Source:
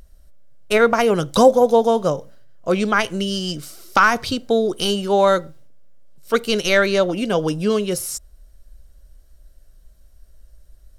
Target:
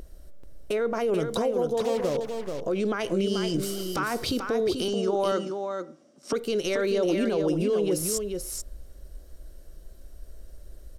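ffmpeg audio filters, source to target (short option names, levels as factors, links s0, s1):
-filter_complex "[0:a]equalizer=f=380:t=o:w=1.3:g=10.5,acompressor=threshold=0.0794:ratio=5,alimiter=limit=0.0841:level=0:latency=1:release=23,asettb=1/sr,asplit=3[s0][s1][s2];[s0]atrim=end=1.774[s3];[s1]atrim=start=1.77:end=2.17,asetpts=PTS-STARTPTS,afade=t=in:d=0.004:c=qsin,afade=t=out:st=0.396:d=0.004:c=qsin,acrusher=bits=5:mix=0:aa=0.5[s4];[s2]atrim=start=2.166[s5];[s3][s4]acrossfade=d=0.004:c1=hsin:c2=qsin[s6];[s6][s5]acrossfade=d=0.004:c1=qsin:c2=hsin,asettb=1/sr,asplit=3[s7][s8][s9];[s7]atrim=end=4.884[s10];[s8]atrim=start=4.88:end=6.33,asetpts=PTS-STARTPTS,afade=t=in:d=0.004:c=qsin,afade=t=out:st=1.446:d=0.004:c=qsin,highpass=f=200:w=0.5412,highpass=f=200:w=1.3066,equalizer=f=240:t=q:w=4:g=9,equalizer=f=460:t=q:w=4:g=-8,equalizer=f=690:t=q:w=4:g=4,equalizer=f=1200:t=q:w=4:g=6,equalizer=f=4000:t=q:w=4:g=-3,equalizer=f=5700:t=q:w=4:g=8,lowpass=f=9100:w=0.5412,lowpass=f=9100:w=1.3066[s11];[s9]atrim=start=6.326[s12];[s10][s11]acrossfade=d=0.004:c1=hsin:c2=qsin[s13];[s13][s12]acrossfade=d=0.004:c1=qsin:c2=hsin,aecho=1:1:435:0.501,volume=1.33"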